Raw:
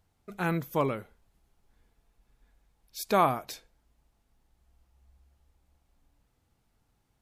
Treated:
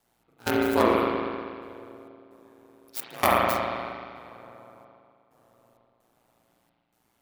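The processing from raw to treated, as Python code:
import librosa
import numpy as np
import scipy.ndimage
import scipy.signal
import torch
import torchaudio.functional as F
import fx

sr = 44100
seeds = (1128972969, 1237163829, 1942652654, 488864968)

y = fx.tracing_dist(x, sr, depth_ms=0.38)
y = scipy.signal.sosfilt(scipy.signal.butter(2, 210.0, 'highpass', fs=sr, output='sos'), y)
y = fx.high_shelf(y, sr, hz=8500.0, db=9.0)
y = fx.echo_filtered(y, sr, ms=129, feedback_pct=84, hz=3700.0, wet_db=-19.5)
y = fx.step_gate(y, sr, bpm=65, pattern='x.xxx..xx.xxx.xx', floor_db=-24.0, edge_ms=4.5)
y = fx.rev_spring(y, sr, rt60_s=2.0, pass_ms=(39,), chirp_ms=40, drr_db=-4.0)
y = y * np.sin(2.0 * np.pi * 59.0 * np.arange(len(y)) / sr)
y = y * librosa.db_to_amplitude(6.0)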